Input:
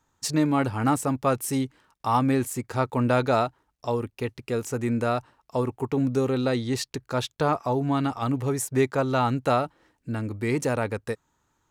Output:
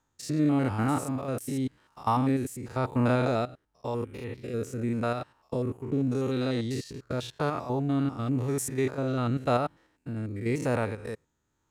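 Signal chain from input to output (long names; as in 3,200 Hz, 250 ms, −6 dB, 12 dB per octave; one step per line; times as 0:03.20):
spectrum averaged block by block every 100 ms
rotating-speaker cabinet horn 0.9 Hz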